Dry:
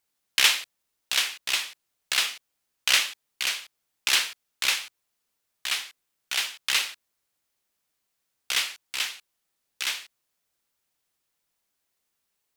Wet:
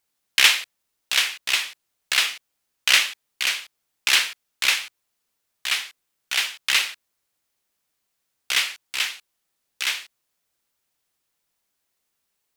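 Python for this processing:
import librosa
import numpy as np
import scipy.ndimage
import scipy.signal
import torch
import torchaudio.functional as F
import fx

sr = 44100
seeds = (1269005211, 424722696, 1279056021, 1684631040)

y = fx.dynamic_eq(x, sr, hz=2100.0, q=1.1, threshold_db=-36.0, ratio=4.0, max_db=4)
y = y * librosa.db_to_amplitude(2.0)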